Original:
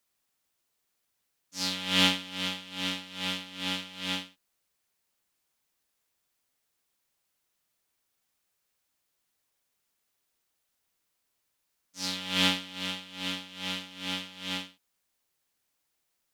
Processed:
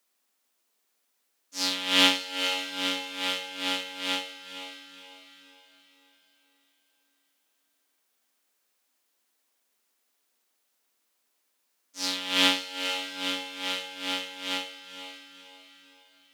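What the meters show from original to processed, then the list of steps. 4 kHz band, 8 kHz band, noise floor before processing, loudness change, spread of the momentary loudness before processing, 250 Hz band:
+3.5 dB, +4.0 dB, -79 dBFS, +3.5 dB, 10 LU, +0.5 dB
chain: elliptic high-pass 220 Hz, stop band 40 dB; diffused feedback echo 0.501 s, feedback 42%, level -10 dB; gain +4.5 dB

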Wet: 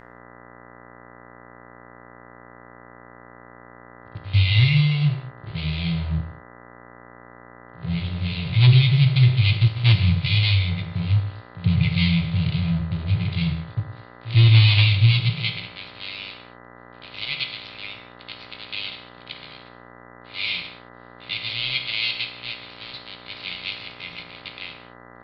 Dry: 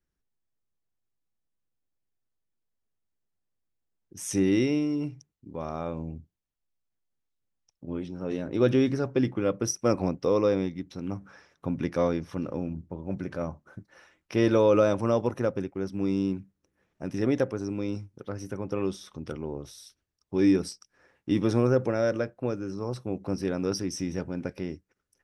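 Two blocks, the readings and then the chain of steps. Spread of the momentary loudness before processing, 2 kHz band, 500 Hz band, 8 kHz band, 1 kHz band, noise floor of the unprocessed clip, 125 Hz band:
15 LU, +13.0 dB, -16.5 dB, under -25 dB, -2.0 dB, -81 dBFS, +15.5 dB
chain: switching dead time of 0.18 ms; FFT band-reject 180–2000 Hz; high shelf 2800 Hz +6 dB; high-pass sweep 98 Hz -> 480 Hz, 14.83–16.19; sample leveller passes 2; steep low-pass 4500 Hz 96 dB/oct; buzz 60 Hz, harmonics 34, -52 dBFS -1 dB/oct; pre-echo 93 ms -19 dB; non-linear reverb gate 0.24 s falling, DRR 4.5 dB; gain +5 dB

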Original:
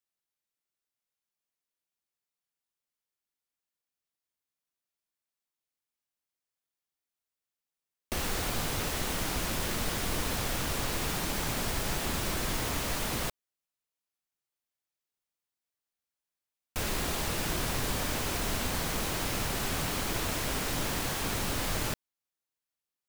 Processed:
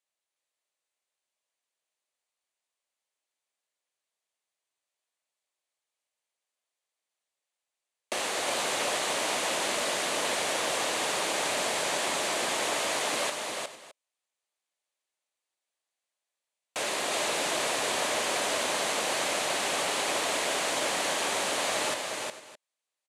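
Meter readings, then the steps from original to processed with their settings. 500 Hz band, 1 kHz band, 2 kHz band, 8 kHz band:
+6.5 dB, +6.0 dB, +5.5 dB, +4.5 dB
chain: speaker cabinet 470–9700 Hz, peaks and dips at 600 Hz +5 dB, 1400 Hz -4 dB, 5300 Hz -5 dB; tapped delay 0.36/0.455/0.614 s -4/-17.5/-18.5 dB; gain +5 dB

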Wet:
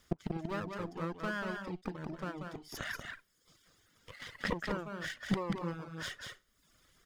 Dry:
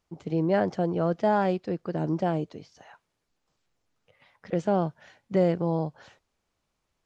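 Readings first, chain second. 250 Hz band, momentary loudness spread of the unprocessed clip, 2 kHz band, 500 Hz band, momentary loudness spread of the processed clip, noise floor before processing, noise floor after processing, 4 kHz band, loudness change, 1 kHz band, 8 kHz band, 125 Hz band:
-10.5 dB, 8 LU, +1.0 dB, -15.0 dB, 12 LU, -80 dBFS, -73 dBFS, +3.5 dB, -12.0 dB, -11.5 dB, n/a, -10.5 dB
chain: minimum comb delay 0.6 ms; flipped gate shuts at -31 dBFS, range -25 dB; tilt shelf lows -3 dB, about 700 Hz; loudspeakers at several distances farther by 64 m -4 dB, 83 m -11 dB; reverb removal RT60 0.76 s; gain +13 dB

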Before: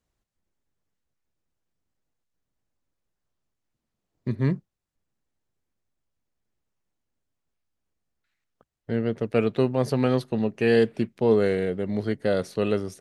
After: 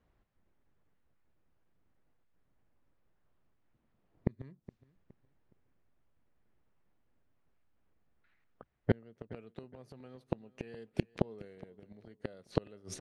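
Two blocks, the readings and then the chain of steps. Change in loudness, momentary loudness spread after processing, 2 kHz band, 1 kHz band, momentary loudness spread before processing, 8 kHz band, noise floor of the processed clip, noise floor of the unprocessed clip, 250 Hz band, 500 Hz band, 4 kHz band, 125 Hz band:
-15.0 dB, 18 LU, -17.5 dB, -14.0 dB, 7 LU, n/a, -75 dBFS, -83 dBFS, -15.0 dB, -18.5 dB, -15.5 dB, -12.0 dB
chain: low-pass opened by the level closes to 2200 Hz, open at -21.5 dBFS; flipped gate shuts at -20 dBFS, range -37 dB; feedback echo 0.417 s, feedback 32%, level -19 dB; gain +7 dB

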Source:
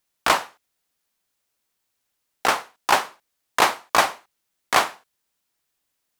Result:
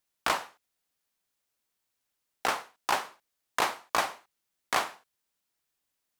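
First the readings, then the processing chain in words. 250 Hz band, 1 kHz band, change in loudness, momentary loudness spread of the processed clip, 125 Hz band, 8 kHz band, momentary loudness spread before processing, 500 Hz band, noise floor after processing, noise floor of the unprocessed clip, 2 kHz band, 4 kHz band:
-9.0 dB, -9.0 dB, -9.0 dB, 7 LU, -9.0 dB, -9.0 dB, 7 LU, -9.5 dB, -82 dBFS, -77 dBFS, -9.0 dB, -9.0 dB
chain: compressor 2:1, threshold -20 dBFS, peak gain reduction 5.5 dB; gain -5.5 dB

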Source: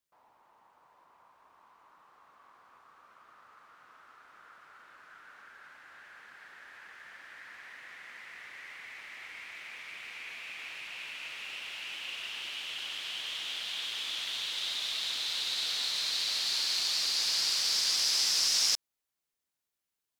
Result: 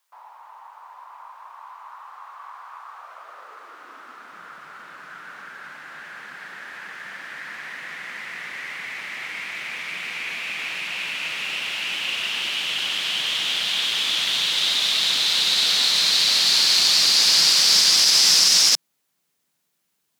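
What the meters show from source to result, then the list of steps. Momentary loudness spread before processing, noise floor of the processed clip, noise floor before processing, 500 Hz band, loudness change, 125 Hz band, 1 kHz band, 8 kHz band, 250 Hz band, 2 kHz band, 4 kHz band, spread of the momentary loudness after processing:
21 LU, -73 dBFS, under -85 dBFS, +14.0 dB, +13.0 dB, n/a, +14.0 dB, +12.5 dB, +17.0 dB, +13.5 dB, +13.0 dB, 21 LU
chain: high-pass sweep 920 Hz -> 160 Hz, 2.84–4.48; maximiser +18 dB; gain -4.5 dB

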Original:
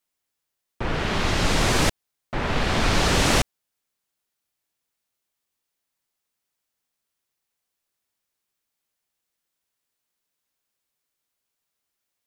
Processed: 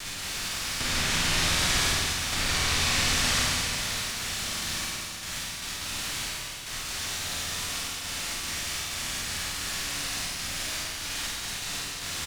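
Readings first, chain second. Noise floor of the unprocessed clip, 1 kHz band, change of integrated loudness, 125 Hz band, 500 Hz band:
-82 dBFS, -4.5 dB, -5.0 dB, -6.0 dB, -10.0 dB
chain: per-bin compression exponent 0.2; gate with hold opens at -18 dBFS; passive tone stack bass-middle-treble 5-5-5; compressor 2.5:1, threshold -33 dBFS, peak gain reduction 7.5 dB; flange 0.52 Hz, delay 9.9 ms, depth 2.9 ms, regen +47%; crossover distortion -57.5 dBFS; doubler 49 ms -3.5 dB; Schroeder reverb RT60 3.2 s, combs from 28 ms, DRR -4.5 dB; gain +6 dB

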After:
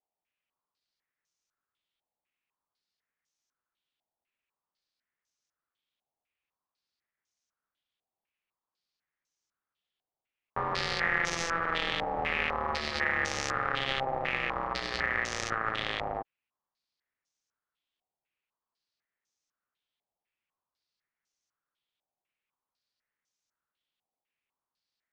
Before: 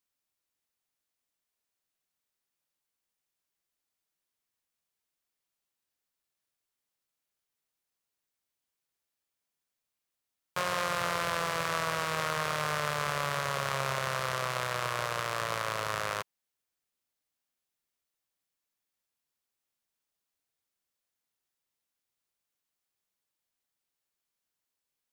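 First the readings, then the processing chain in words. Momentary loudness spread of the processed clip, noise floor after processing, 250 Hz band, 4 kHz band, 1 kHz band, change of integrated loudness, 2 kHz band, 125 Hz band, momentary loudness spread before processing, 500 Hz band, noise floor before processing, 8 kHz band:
5 LU, under -85 dBFS, +2.5 dB, +1.5 dB, -0.5 dB, +1.0 dB, +3.5 dB, -4.0 dB, 2 LU, -1.5 dB, under -85 dBFS, -3.0 dB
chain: ring modulator 670 Hz; stepped low-pass 4 Hz 780–6100 Hz

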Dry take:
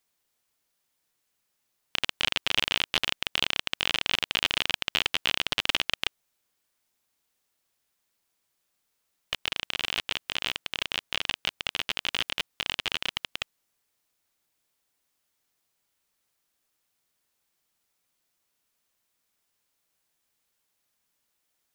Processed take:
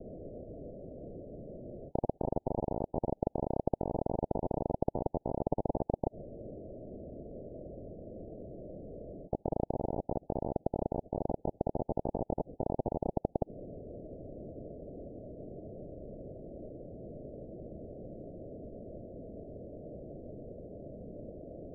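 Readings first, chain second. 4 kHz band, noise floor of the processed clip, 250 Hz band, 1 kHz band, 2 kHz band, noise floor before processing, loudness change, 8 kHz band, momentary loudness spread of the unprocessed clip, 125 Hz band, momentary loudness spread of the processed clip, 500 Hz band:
under -40 dB, -71 dBFS, +11.0 dB, 0.0 dB, under -40 dB, -78 dBFS, -11.0 dB, under -35 dB, 6 LU, +11.0 dB, 12 LU, +10.5 dB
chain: steep low-pass 650 Hz 96 dB/oct; spectral compressor 10:1; gain +9.5 dB

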